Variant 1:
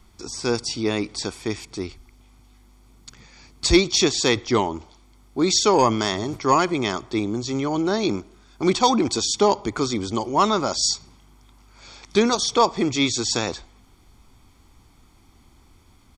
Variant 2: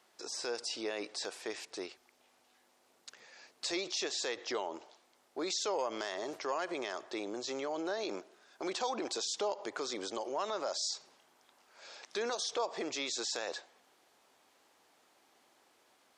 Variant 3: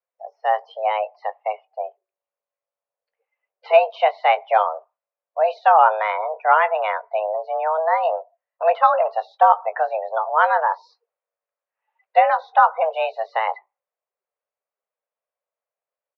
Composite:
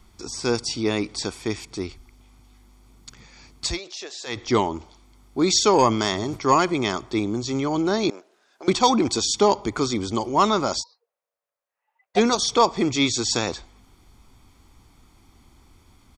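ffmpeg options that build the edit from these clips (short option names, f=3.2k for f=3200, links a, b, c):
-filter_complex "[1:a]asplit=2[a][b];[0:a]asplit=4[c][d][e][f];[c]atrim=end=3.8[g];[a]atrim=start=3.56:end=4.49[h];[d]atrim=start=4.25:end=8.102[i];[b]atrim=start=8.098:end=8.682[j];[e]atrim=start=8.678:end=10.84[k];[2:a]atrim=start=10.78:end=12.2[l];[f]atrim=start=12.14[m];[g][h]acrossfade=d=0.24:c1=tri:c2=tri[n];[n][i]acrossfade=d=0.24:c1=tri:c2=tri[o];[o][j]acrossfade=d=0.004:c1=hsin:c2=hsin[p];[p][k]acrossfade=d=0.004:c1=hsin:c2=hsin[q];[q][l]acrossfade=d=0.06:c1=tri:c2=tri[r];[r][m]acrossfade=d=0.06:c1=tri:c2=tri"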